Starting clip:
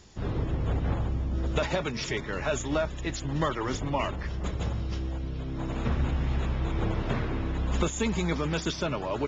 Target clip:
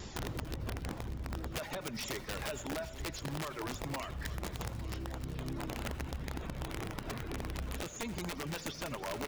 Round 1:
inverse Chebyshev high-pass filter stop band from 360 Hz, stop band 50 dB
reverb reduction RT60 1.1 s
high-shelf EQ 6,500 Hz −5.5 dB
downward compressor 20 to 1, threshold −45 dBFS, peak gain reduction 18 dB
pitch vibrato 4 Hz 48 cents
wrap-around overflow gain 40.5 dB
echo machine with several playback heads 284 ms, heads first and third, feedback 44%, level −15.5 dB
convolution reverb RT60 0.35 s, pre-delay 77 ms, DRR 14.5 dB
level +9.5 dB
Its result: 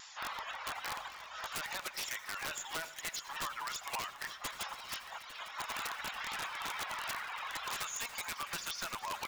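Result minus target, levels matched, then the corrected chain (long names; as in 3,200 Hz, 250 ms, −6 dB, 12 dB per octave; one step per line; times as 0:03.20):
500 Hz band −10.0 dB
reverb reduction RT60 1.1 s
high-shelf EQ 6,500 Hz −5.5 dB
downward compressor 20 to 1, threshold −45 dBFS, peak gain reduction 23.5 dB
pitch vibrato 4 Hz 48 cents
wrap-around overflow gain 40.5 dB
echo machine with several playback heads 284 ms, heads first and third, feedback 44%, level −15.5 dB
convolution reverb RT60 0.35 s, pre-delay 77 ms, DRR 14.5 dB
level +9.5 dB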